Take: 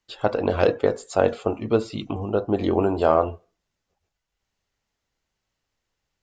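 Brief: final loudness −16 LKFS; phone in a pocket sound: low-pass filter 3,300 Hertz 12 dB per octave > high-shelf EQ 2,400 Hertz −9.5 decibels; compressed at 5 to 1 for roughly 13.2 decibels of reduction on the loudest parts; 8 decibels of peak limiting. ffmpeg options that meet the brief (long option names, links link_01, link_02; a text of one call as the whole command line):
ffmpeg -i in.wav -af "acompressor=threshold=-28dB:ratio=5,alimiter=limit=-21.5dB:level=0:latency=1,lowpass=3300,highshelf=frequency=2400:gain=-9.5,volume=19.5dB" out.wav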